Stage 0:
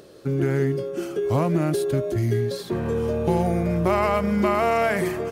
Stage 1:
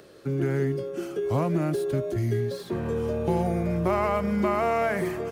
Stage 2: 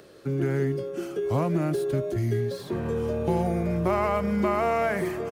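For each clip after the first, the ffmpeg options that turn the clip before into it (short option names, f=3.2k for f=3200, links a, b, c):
-filter_complex "[0:a]acrossover=split=160|1700|1900[a][b][c][d];[c]acompressor=mode=upward:threshold=-53dB:ratio=2.5[e];[d]asoftclip=type=tanh:threshold=-39dB[f];[a][b][e][f]amix=inputs=4:normalize=0,volume=-3.5dB"
-filter_complex "[0:a]asplit=2[a][b];[b]adelay=1283,volume=-22dB,highshelf=f=4k:g=-28.9[c];[a][c]amix=inputs=2:normalize=0"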